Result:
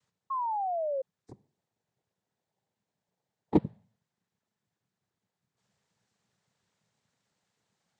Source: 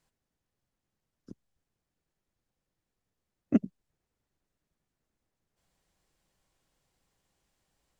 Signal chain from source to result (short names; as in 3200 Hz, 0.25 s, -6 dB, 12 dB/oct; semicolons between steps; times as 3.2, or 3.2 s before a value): de-hum 159.2 Hz, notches 32; 1.31–3.57 bell 490 Hz +9 dB 0.53 oct; noise vocoder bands 6; 0.3–1.02 painted sound fall 520–1100 Hz -31 dBFS